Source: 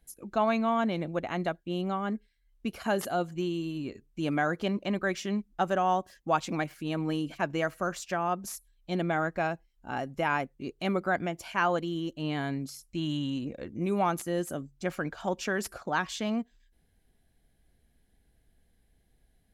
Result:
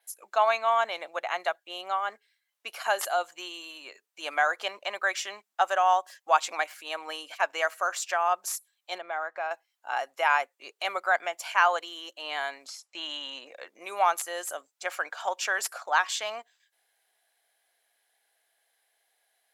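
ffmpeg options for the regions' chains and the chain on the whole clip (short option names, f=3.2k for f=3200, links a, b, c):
-filter_complex "[0:a]asettb=1/sr,asplit=3[a][b][c];[a]atrim=end=8.984[d];[b]atrim=start=8.98:end=9.51,asetpts=PTS-STARTPTS,afade=t=in:d=0.004:c=qsin,afade=t=out:st=0.526:d=0.004:c=qsin,lowpass=f=1.8k:p=1,acompressor=threshold=-30dB:ratio=4:attack=3.2:release=140:knee=1:detection=peak[e];[c]atrim=start=9.506[f];[d][e]acrossfade=d=0.004:c1=hsin:c2=qsin[g];[g][f]acrossfade=d=0.004:c1=qsin:c2=hsin,asettb=1/sr,asplit=3[h][i][j];[h]atrim=end=12.674[k];[i]atrim=start=12.67:end=13.46,asetpts=PTS-STARTPTS,afade=t=in:d=0.004:c=qsin,afade=t=out:st=0.786:d=0.004:c=qsin,lowpass=6k,equalizer=f=590:t=o:w=2.8:g=4[l];[j]atrim=start=13.456[m];[k][l]acrossfade=d=0.004:c1=hsin:c2=qsin[n];[n][m]acrossfade=d=0.004:c1=qsin:c2=hsin,highpass=f=680:w=0.5412,highpass=f=680:w=1.3066,adynamicequalizer=threshold=0.001:dfrequency=7500:dqfactor=4.8:tfrequency=7500:tqfactor=4.8:attack=5:release=100:ratio=0.375:range=2:mode=boostabove:tftype=bell,volume=6dB"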